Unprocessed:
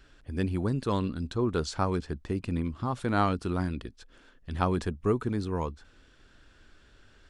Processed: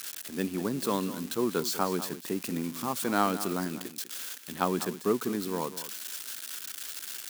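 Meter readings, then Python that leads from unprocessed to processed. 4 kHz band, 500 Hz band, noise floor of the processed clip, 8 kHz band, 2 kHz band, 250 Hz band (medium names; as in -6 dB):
+6.5 dB, 0.0 dB, -46 dBFS, +14.0 dB, +1.5 dB, -0.5 dB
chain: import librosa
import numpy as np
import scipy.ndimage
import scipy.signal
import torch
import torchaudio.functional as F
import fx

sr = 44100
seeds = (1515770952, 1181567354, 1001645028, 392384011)

p1 = x + 0.5 * 10.0 ** (-26.5 / 20.0) * np.diff(np.sign(x), prepend=np.sign(x[:1]))
p2 = scipy.signal.sosfilt(scipy.signal.butter(4, 180.0, 'highpass', fs=sr, output='sos'), p1)
y = p2 + fx.echo_single(p2, sr, ms=198, db=-13.5, dry=0)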